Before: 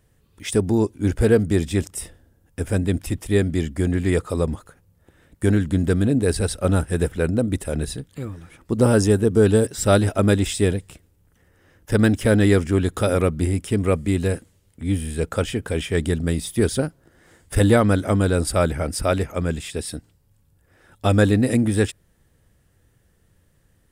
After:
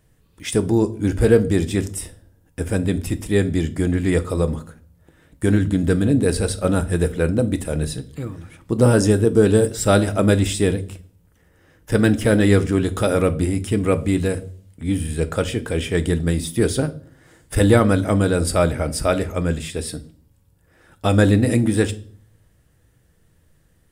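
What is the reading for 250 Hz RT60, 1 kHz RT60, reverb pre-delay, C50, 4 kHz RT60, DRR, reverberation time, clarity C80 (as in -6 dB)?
0.70 s, 0.40 s, 6 ms, 17.5 dB, 0.45 s, 9.5 dB, 0.50 s, 22.5 dB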